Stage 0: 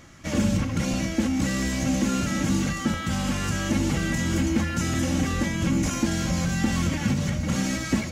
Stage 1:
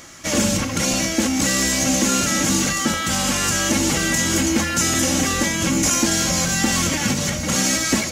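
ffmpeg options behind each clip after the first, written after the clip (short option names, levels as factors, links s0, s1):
-af "bass=f=250:g=-10,treble=f=4000:g=8,volume=2.51"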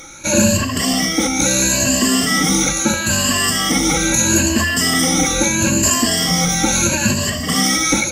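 -af "afftfilt=real='re*pow(10,19/40*sin(2*PI*(1.4*log(max(b,1)*sr/1024/100)/log(2)-(0.76)*(pts-256)/sr)))':imag='im*pow(10,19/40*sin(2*PI*(1.4*log(max(b,1)*sr/1024/100)/log(2)-(0.76)*(pts-256)/sr)))':win_size=1024:overlap=0.75"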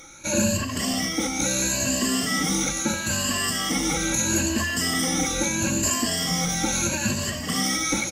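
-af "aecho=1:1:439:0.168,volume=0.376"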